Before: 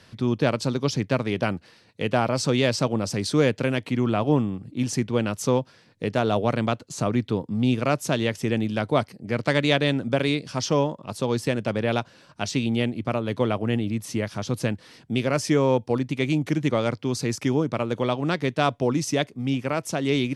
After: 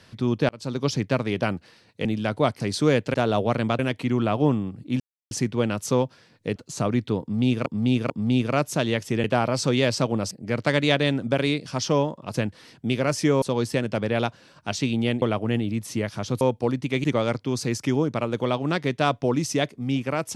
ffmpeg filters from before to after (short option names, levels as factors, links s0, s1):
-filter_complex "[0:a]asplit=17[s0][s1][s2][s3][s4][s5][s6][s7][s8][s9][s10][s11][s12][s13][s14][s15][s16];[s0]atrim=end=0.49,asetpts=PTS-STARTPTS,afade=t=out:st=0.486:d=0.004:c=hsin[s17];[s1]atrim=start=0.49:end=2.052,asetpts=PTS-STARTPTS,afade=t=in:d=0.34[s18];[s2]atrim=start=8.568:end=9.122[s19];[s3]atrim=start=3.118:end=3.662[s20];[s4]atrim=start=6.118:end=6.772[s21];[s5]atrim=start=3.658:end=4.87,asetpts=PTS-STARTPTS,afade=t=out:st=1.208:d=0.004:c=hsin,apad=pad_dur=0.31[s22];[s6]atrim=start=4.87:end=6.122,asetpts=PTS-STARTPTS,afade=t=in:d=0.004:c=hsin[s23];[s7]atrim=start=6.768:end=7.872[s24];[s8]atrim=start=7.428:end=7.872[s25];[s9]atrim=start=7.428:end=8.572[s26];[s10]atrim=start=2.048:end=3.122[s27];[s11]atrim=start=9.118:end=11.152[s28];[s12]atrim=start=14.598:end=15.682[s29];[s13]atrim=start=11.148:end=12.952[s30];[s14]atrim=start=13.408:end=14.602[s31];[s15]atrim=start=15.678:end=16.312[s32];[s16]atrim=start=16.618[s33];[s17][s18]concat=n=2:v=0:a=1[s34];[s34][s19]acrossfade=d=0.004:c1=hsin:c2=hsin[s35];[s35][s20]acrossfade=d=0.004:c1=hsin:c2=hsin[s36];[s36][s21]acrossfade=d=0.004:c1=hsin:c2=hsin[s37];[s22][s23]concat=n=2:v=0:a=1[s38];[s37][s38]acrossfade=d=0.004:c1=hsin:c2=hsin[s39];[s39][s24]acrossfade=d=0.004:c1=hsin:c2=hsin[s40];[s40][s25]acrossfade=d=0.004:c1=hsin:c2=hsin[s41];[s41][s26]acrossfade=d=0.004:c1=hsin:c2=hsin[s42];[s42][s27]acrossfade=d=0.004:c1=hsin:c2=hsin[s43];[s43][s28]acrossfade=d=0.004:c1=hsin:c2=hsin[s44];[s44][s29]acrossfade=d=0.004:c1=hsin:c2=hsin[s45];[s45][s30]acrossfade=d=0.004:c1=hsin:c2=hsin[s46];[s46][s31]acrossfade=d=0.004:c1=hsin:c2=hsin[s47];[s47][s32]acrossfade=d=0.004:c1=hsin:c2=hsin[s48];[s48][s33]acrossfade=d=0.004:c1=hsin:c2=hsin"